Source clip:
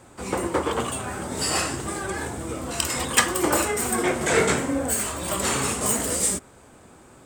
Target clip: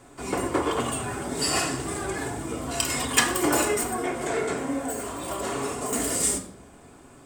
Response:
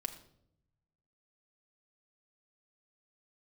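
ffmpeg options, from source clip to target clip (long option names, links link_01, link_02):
-filter_complex "[0:a]asettb=1/sr,asplit=3[link_01][link_02][link_03];[link_01]atrim=end=3.834[link_04];[link_02]atrim=start=3.83:end=5.93,asetpts=PTS-STARTPTS,afade=type=in:duration=0.004:curve=qsin,afade=type=out:start_time=2.096:duration=0.004:curve=qsin,acrossover=split=310|1300[link_05][link_06][link_07];[link_05]acompressor=threshold=-39dB:ratio=4[link_08];[link_06]acompressor=threshold=-26dB:ratio=4[link_09];[link_07]acompressor=threshold=-36dB:ratio=4[link_10];[link_08][link_09][link_10]amix=inputs=3:normalize=0[link_11];[link_03]atrim=start=5.926[link_12];[link_04][link_11]acrossfade=duration=0.004:curve1=hsin:curve2=qsin[link_13];[link_13][link_12]acrossfade=duration=0.004:curve1=qsin:curve2=hsin[link_14];[1:a]atrim=start_sample=2205[link_15];[link_14][link_15]afir=irnorm=-1:irlink=0"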